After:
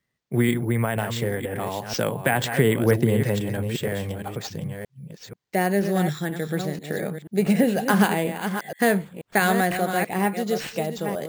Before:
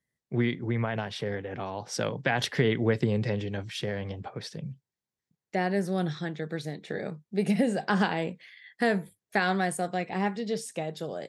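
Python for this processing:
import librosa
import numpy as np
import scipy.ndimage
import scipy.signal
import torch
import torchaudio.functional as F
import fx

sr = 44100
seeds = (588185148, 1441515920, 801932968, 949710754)

y = fx.reverse_delay(x, sr, ms=485, wet_db=-8)
y = fx.lowpass(y, sr, hz=3100.0, slope=6, at=(2.01, 4.07))
y = np.repeat(y[::4], 4)[:len(y)]
y = y * 10.0 ** (5.5 / 20.0)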